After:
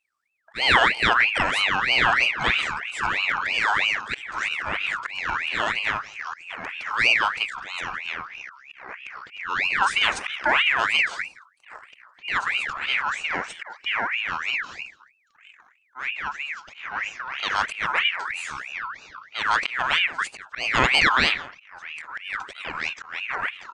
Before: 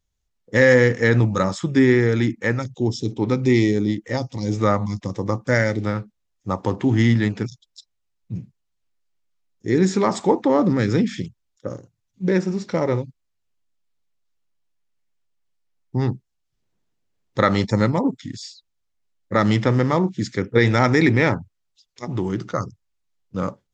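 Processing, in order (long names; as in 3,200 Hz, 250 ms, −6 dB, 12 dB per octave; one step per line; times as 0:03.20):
single-tap delay 170 ms −18 dB
volume swells 228 ms
delay with pitch and tempo change per echo 689 ms, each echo −4 semitones, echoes 2, each echo −6 dB
ring modulator whose carrier an LFO sweeps 1,900 Hz, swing 40%, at 3.1 Hz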